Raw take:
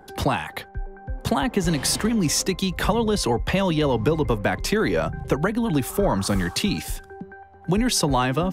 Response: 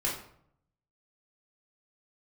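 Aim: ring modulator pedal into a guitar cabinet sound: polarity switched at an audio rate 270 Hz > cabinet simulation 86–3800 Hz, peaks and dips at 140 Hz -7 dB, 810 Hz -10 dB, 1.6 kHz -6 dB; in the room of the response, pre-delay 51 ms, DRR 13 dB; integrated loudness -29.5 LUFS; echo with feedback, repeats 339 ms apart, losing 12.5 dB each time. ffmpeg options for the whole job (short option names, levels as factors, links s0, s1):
-filter_complex "[0:a]aecho=1:1:339|678|1017:0.237|0.0569|0.0137,asplit=2[s0][s1];[1:a]atrim=start_sample=2205,adelay=51[s2];[s1][s2]afir=irnorm=-1:irlink=0,volume=0.106[s3];[s0][s3]amix=inputs=2:normalize=0,aeval=exprs='val(0)*sgn(sin(2*PI*270*n/s))':c=same,highpass=86,equalizer=f=140:t=q:w=4:g=-7,equalizer=f=810:t=q:w=4:g=-10,equalizer=f=1600:t=q:w=4:g=-6,lowpass=f=3800:w=0.5412,lowpass=f=3800:w=1.3066,volume=0.631"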